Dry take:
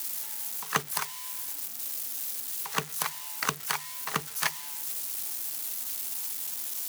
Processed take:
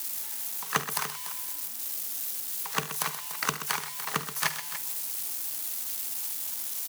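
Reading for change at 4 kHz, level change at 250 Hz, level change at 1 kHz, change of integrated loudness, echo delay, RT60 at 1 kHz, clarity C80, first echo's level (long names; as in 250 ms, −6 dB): +0.5 dB, +1.0 dB, +0.5 dB, +0.5 dB, 49 ms, no reverb audible, no reverb audible, −15.5 dB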